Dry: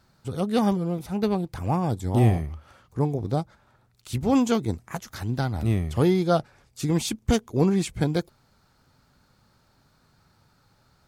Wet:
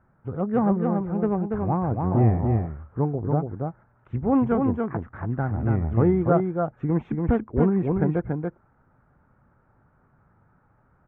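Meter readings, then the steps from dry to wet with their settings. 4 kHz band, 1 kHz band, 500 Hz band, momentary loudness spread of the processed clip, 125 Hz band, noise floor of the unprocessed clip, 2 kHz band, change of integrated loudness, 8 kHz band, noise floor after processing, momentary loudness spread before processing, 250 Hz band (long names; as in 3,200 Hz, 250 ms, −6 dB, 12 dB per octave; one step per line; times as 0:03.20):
below −25 dB, +1.5 dB, +1.5 dB, 10 LU, +1.5 dB, −64 dBFS, −2.5 dB, +1.0 dB, below −40 dB, −63 dBFS, 12 LU, +1.5 dB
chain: inverse Chebyshev low-pass filter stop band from 4,300 Hz, stop band 50 dB
single-tap delay 284 ms −4 dB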